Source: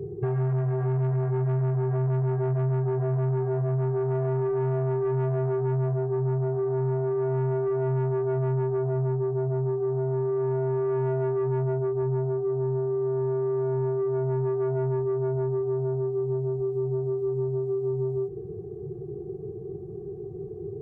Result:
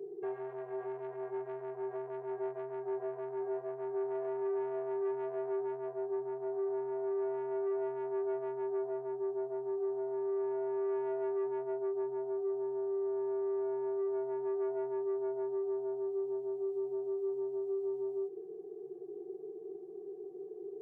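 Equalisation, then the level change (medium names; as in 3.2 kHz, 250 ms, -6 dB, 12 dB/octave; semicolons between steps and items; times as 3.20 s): high-pass 320 Hz 24 dB/octave; peaking EQ 1.3 kHz -6.5 dB 0.28 oct; -6.5 dB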